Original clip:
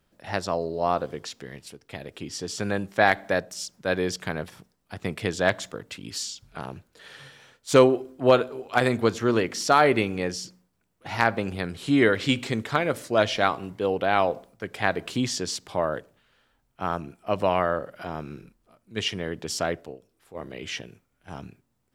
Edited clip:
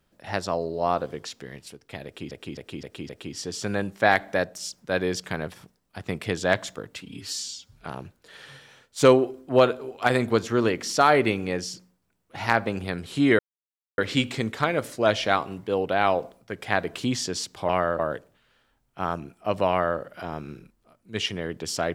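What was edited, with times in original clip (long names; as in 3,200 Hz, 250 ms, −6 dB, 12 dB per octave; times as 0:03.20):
0:02.05–0:02.31: repeat, 5 plays
0:05.97–0:06.47: time-stretch 1.5×
0:12.10: splice in silence 0.59 s
0:17.51–0:17.81: duplicate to 0:15.81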